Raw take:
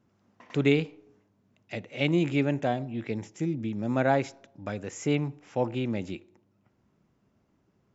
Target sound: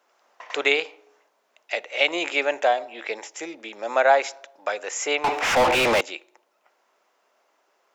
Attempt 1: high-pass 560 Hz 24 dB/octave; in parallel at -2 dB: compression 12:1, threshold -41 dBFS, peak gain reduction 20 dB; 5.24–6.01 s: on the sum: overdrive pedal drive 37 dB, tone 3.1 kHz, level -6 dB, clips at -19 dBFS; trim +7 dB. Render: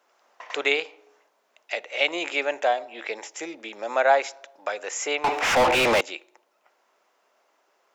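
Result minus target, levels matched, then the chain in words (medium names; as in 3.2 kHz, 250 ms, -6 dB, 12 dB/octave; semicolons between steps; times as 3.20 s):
compression: peak gain reduction +10.5 dB
high-pass 560 Hz 24 dB/octave; in parallel at -2 dB: compression 12:1, threshold -29.5 dBFS, peak gain reduction 9.5 dB; 5.24–6.01 s: on the sum: overdrive pedal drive 37 dB, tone 3.1 kHz, level -6 dB, clips at -19 dBFS; trim +7 dB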